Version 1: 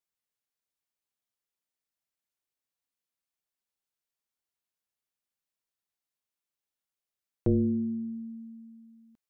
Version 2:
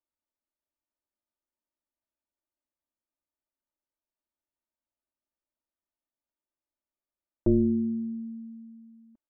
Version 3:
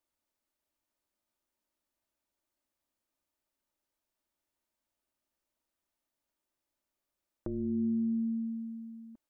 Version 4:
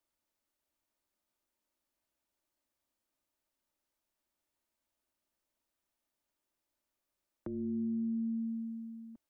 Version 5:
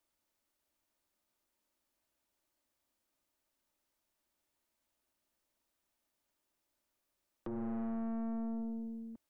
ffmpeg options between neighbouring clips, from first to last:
-af "lowpass=1000,aecho=1:1:3.3:0.9"
-af "acompressor=threshold=0.0178:ratio=4,alimiter=level_in=2.24:limit=0.0631:level=0:latency=1:release=380,volume=0.447,volume=2.11"
-filter_complex "[0:a]acrossover=split=130|350[s0][s1][s2];[s0]acompressor=threshold=0.00141:ratio=4[s3];[s1]acompressor=threshold=0.02:ratio=4[s4];[s2]acompressor=threshold=0.00251:ratio=4[s5];[s3][s4][s5]amix=inputs=3:normalize=0"
-af "aeval=exprs='(tanh(112*val(0)+0.45)-tanh(0.45))/112':c=same,volume=1.68"

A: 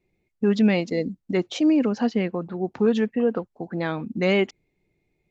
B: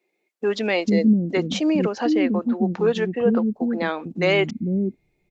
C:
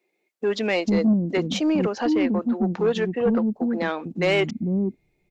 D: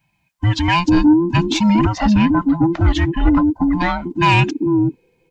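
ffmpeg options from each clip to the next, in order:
-filter_complex "[0:a]acrossover=split=310[s0][s1];[s0]adelay=450[s2];[s2][s1]amix=inputs=2:normalize=0,volume=1.58"
-af "asoftclip=type=tanh:threshold=0.224"
-af "afftfilt=real='real(if(between(b,1,1008),(2*floor((b-1)/24)+1)*24-b,b),0)':imag='imag(if(between(b,1,1008),(2*floor((b-1)/24)+1)*24-b,b),0)*if(between(b,1,1008),-1,1)':win_size=2048:overlap=0.75,volume=2.37"

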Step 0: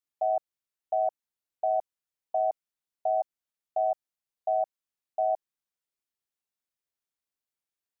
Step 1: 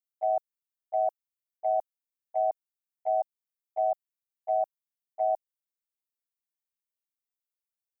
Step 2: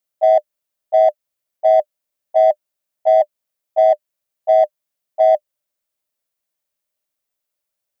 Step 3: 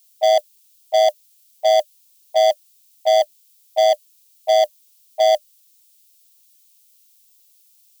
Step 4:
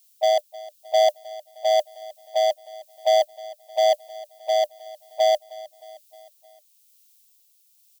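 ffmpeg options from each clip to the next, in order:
-af "aemphasis=mode=production:type=50kf,agate=range=0.178:threshold=0.0447:ratio=16:detection=peak"
-filter_complex "[0:a]equalizer=f=600:t=o:w=0.21:g=12.5,asplit=2[s0][s1];[s1]asoftclip=type=tanh:threshold=0.0398,volume=0.355[s2];[s0][s2]amix=inputs=2:normalize=0,volume=2.66"
-af "aexciter=amount=14.5:drive=5.5:freq=2400,volume=0.75"
-af "tremolo=f=0.99:d=0.31,aecho=1:1:310|620|930|1240:0.112|0.0606|0.0327|0.0177,volume=0.75"

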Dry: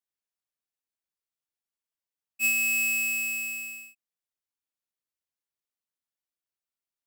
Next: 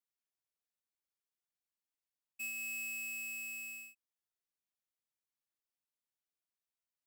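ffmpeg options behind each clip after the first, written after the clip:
-af "acompressor=threshold=0.0112:ratio=4,volume=0.562"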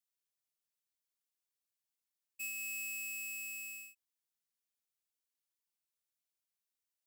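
-af "highshelf=f=2600:g=9.5,volume=0.501"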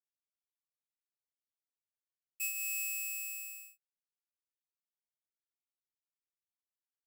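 -af "acrusher=bits=5:mix=0:aa=0.5,volume=1.88"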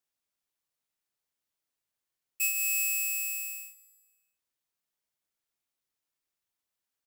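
-af "aecho=1:1:161|322|483|644:0.0891|0.0499|0.0279|0.0157,volume=2.51"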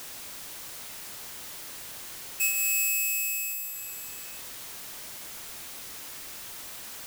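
-af "aeval=exprs='val(0)+0.5*0.0211*sgn(val(0))':c=same,volume=1.19"

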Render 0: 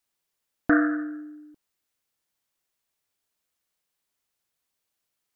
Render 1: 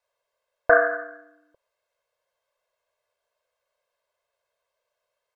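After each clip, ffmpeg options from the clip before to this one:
-af "lowpass=f=1200:p=1,lowshelf=f=400:t=q:w=3:g=-12.5,aecho=1:1:1.9:0.83,volume=2.11"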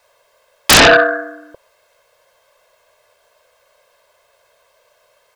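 -af "aeval=exprs='0.668*sin(PI/2*10*val(0)/0.668)':c=same"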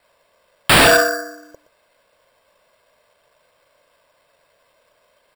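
-af "acrusher=samples=7:mix=1:aa=0.000001,aecho=1:1:119:0.141,volume=0.668"

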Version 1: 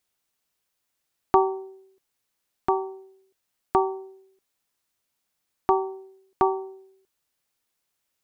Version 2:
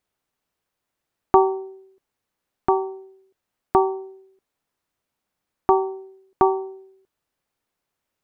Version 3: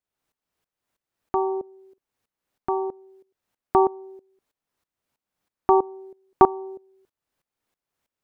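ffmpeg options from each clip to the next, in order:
-af "highshelf=f=2400:g=-12,volume=1.78"
-af "aeval=exprs='val(0)*pow(10,-18*if(lt(mod(-3.1*n/s,1),2*abs(-3.1)/1000),1-mod(-3.1*n/s,1)/(2*abs(-3.1)/1000),(mod(-3.1*n/s,1)-2*abs(-3.1)/1000)/(1-2*abs(-3.1)/1000))/20)':c=same,volume=1.68"

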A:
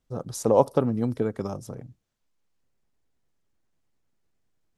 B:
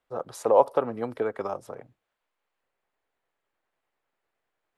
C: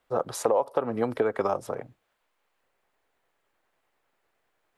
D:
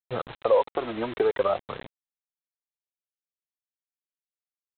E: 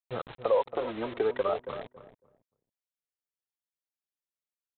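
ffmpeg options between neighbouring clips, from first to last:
-filter_complex "[0:a]equalizer=f=5800:w=2.6:g=-5,asplit=2[s0][s1];[s1]alimiter=limit=0.188:level=0:latency=1:release=128,volume=1.12[s2];[s0][s2]amix=inputs=2:normalize=0,acrossover=split=450 3000:gain=0.0891 1 0.224[s3][s4][s5];[s3][s4][s5]amix=inputs=3:normalize=0"
-af "acompressor=threshold=0.0447:ratio=12,volume=2.24"
-af "aphaser=in_gain=1:out_gain=1:delay=3.4:decay=0.65:speed=0.51:type=triangular,aresample=8000,acrusher=bits=5:mix=0:aa=0.000001,aresample=44100,volume=0.75"
-filter_complex "[0:a]asplit=2[s0][s1];[s1]adelay=276,lowpass=f=960:p=1,volume=0.316,asplit=2[s2][s3];[s3]adelay=276,lowpass=f=960:p=1,volume=0.2,asplit=2[s4][s5];[s5]adelay=276,lowpass=f=960:p=1,volume=0.2[s6];[s0][s2][s4][s6]amix=inputs=4:normalize=0,volume=0.596"

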